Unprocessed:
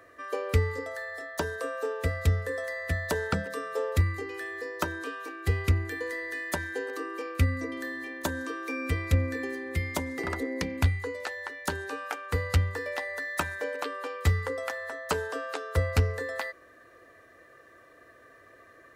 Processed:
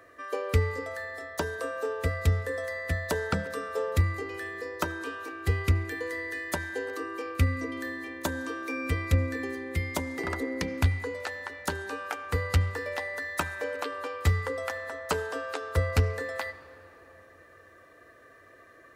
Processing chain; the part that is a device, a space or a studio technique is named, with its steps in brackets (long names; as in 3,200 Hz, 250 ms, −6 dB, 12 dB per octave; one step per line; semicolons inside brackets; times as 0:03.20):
filtered reverb send (on a send: high-pass filter 410 Hz 6 dB per octave + low-pass filter 7,600 Hz 12 dB per octave + convolution reverb RT60 3.8 s, pre-delay 66 ms, DRR 15 dB)